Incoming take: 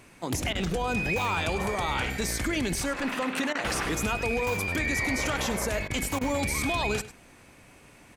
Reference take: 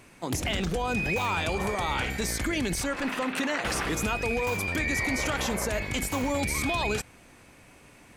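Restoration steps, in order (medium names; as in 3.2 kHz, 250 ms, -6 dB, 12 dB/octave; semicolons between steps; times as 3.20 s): interpolate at 0.53/3.53/5.88/6.19 s, 20 ms; inverse comb 100 ms -15.5 dB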